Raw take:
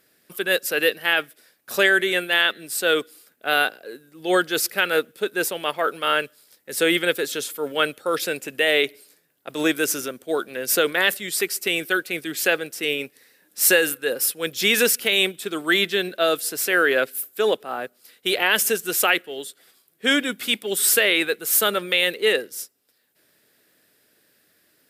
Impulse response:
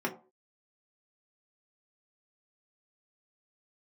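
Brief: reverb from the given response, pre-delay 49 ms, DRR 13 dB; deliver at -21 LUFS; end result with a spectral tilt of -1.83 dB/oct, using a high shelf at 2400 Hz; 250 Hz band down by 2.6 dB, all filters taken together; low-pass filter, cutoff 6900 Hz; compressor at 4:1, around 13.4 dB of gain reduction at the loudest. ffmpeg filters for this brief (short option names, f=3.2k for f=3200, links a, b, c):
-filter_complex "[0:a]lowpass=6.9k,equalizer=f=250:t=o:g=-4,highshelf=f=2.4k:g=-4,acompressor=threshold=-32dB:ratio=4,asplit=2[a][b];[1:a]atrim=start_sample=2205,adelay=49[c];[b][c]afir=irnorm=-1:irlink=0,volume=-20dB[d];[a][d]amix=inputs=2:normalize=0,volume=13.5dB"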